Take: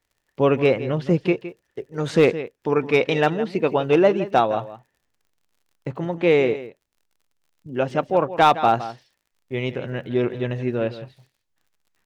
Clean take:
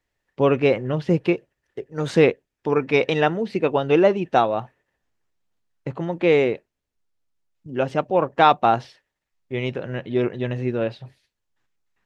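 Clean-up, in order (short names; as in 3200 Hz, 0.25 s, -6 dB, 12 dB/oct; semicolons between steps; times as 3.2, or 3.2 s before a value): clip repair -7 dBFS; de-click; inverse comb 0.164 s -14 dB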